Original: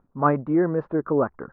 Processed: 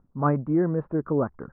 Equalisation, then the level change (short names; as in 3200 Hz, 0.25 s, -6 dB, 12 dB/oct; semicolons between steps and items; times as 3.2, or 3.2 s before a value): air absorption 340 m; tone controls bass +7 dB, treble -8 dB; -3.5 dB